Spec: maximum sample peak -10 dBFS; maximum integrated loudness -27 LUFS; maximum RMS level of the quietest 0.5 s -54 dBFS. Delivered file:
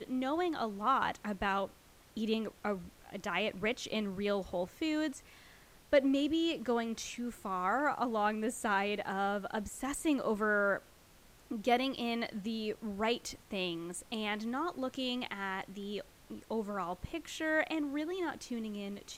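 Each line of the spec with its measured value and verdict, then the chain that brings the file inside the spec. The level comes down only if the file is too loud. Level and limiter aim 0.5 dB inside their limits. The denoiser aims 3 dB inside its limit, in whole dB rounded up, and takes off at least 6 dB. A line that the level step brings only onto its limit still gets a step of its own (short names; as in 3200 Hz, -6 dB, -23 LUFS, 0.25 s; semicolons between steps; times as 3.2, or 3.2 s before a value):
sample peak -15.0 dBFS: OK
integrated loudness -35.0 LUFS: OK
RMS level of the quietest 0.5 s -60 dBFS: OK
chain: none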